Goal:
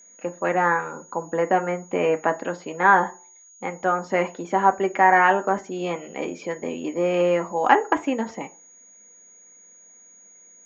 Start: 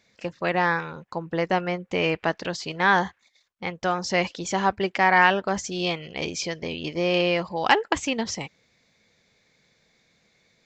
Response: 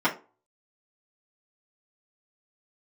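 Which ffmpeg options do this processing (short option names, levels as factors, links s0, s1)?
-filter_complex "[0:a]acrossover=split=200 2200:gain=0.178 1 0.0708[s0][s1][s2];[s0][s1][s2]amix=inputs=3:normalize=0,aeval=exprs='val(0)+0.00355*sin(2*PI*6700*n/s)':c=same,asplit=2[s3][s4];[1:a]atrim=start_sample=2205,lowpass=3400[s5];[s4][s5]afir=irnorm=-1:irlink=0,volume=0.126[s6];[s3][s6]amix=inputs=2:normalize=0,volume=1.12"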